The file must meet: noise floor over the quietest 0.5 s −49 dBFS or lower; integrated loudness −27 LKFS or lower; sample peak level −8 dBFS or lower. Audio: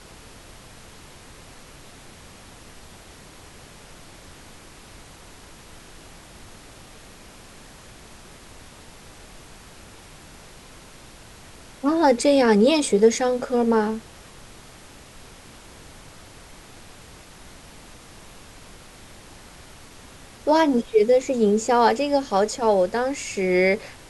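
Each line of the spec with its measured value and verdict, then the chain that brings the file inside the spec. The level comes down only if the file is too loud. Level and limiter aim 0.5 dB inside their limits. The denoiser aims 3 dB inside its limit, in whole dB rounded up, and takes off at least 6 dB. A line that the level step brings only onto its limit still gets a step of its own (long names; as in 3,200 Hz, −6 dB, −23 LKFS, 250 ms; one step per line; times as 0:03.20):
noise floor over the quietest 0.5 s −45 dBFS: out of spec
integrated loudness −20.0 LKFS: out of spec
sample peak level −5.0 dBFS: out of spec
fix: level −7.5 dB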